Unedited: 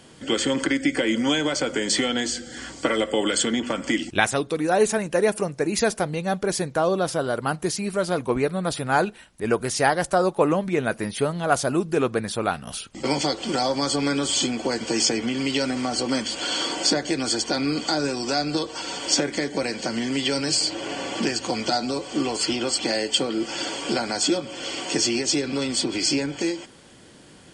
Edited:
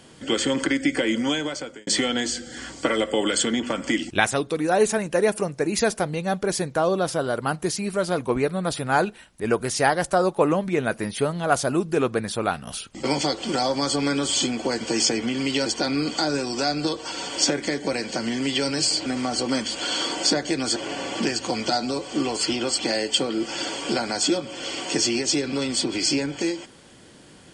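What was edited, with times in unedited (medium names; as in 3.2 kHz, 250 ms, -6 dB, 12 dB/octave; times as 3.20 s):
0.89–1.87 s: fade out equal-power
15.66–17.36 s: move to 20.76 s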